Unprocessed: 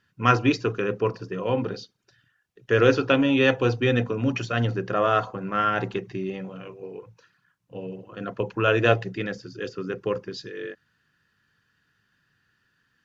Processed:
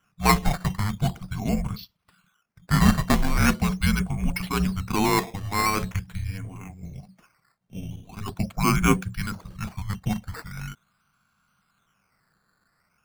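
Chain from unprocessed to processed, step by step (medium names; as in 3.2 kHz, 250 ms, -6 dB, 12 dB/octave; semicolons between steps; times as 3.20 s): frequency shift -300 Hz; decimation with a swept rate 10×, swing 100% 0.42 Hz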